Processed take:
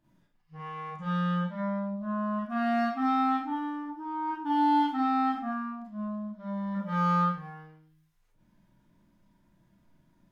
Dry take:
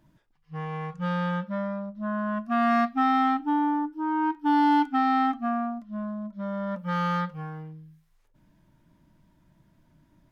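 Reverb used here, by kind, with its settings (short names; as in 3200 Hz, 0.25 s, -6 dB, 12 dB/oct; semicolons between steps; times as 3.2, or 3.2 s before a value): Schroeder reverb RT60 0.41 s, combs from 31 ms, DRR -6.5 dB; gain -10.5 dB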